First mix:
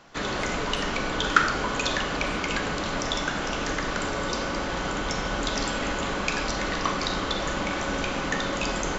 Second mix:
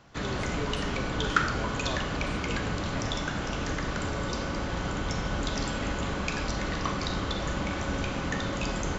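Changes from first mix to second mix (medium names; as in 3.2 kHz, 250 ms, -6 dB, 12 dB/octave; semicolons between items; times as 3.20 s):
background -5.5 dB; master: add peaking EQ 88 Hz +12 dB 2.1 oct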